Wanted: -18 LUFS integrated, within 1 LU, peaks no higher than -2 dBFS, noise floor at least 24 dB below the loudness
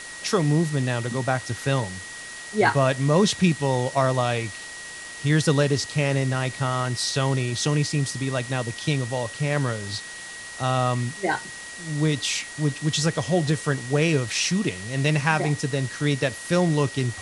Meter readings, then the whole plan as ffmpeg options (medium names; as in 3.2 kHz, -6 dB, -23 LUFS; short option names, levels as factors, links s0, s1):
steady tone 1.9 kHz; tone level -38 dBFS; noise floor -38 dBFS; noise floor target -48 dBFS; loudness -24.0 LUFS; peak level -5.5 dBFS; loudness target -18.0 LUFS
-> -af "bandreject=f=1900:w=30"
-af "afftdn=nr=10:nf=-38"
-af "volume=2,alimiter=limit=0.794:level=0:latency=1"